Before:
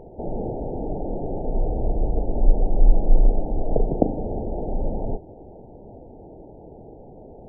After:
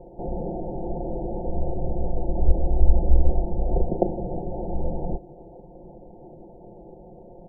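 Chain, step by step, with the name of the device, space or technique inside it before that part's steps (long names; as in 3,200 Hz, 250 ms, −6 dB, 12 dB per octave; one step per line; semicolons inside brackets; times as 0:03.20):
ring-modulated robot voice (ring modulation 40 Hz; comb filter 5.7 ms, depth 87%)
level −1 dB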